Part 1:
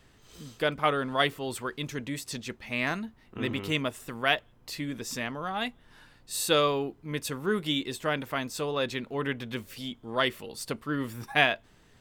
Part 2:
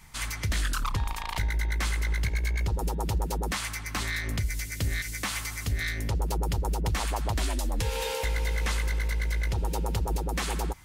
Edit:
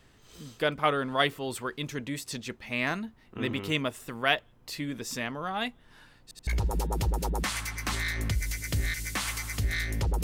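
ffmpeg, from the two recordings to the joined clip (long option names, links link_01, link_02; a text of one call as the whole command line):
ffmpeg -i cue0.wav -i cue1.wav -filter_complex "[0:a]apad=whole_dur=10.23,atrim=end=10.23,asplit=3[link_01][link_02][link_03];[link_01]atrim=end=6.312[link_04];[link_02]atrim=start=6.228:end=6.312[link_05];[link_03]atrim=start=6.228:end=6.312[link_06];[1:a]atrim=start=2.548:end=6.31[link_07];[link_04][link_05]acrossfade=duration=0.004:curve1=hsin:curve2=hsin[link_08];[link_08][link_06]acrossfade=duration=0.004:curve1=hsin:curve2=hsin[link_09];[link_09][link_07]acrossfade=duration=0.004:curve1=hsin:curve2=hsin" out.wav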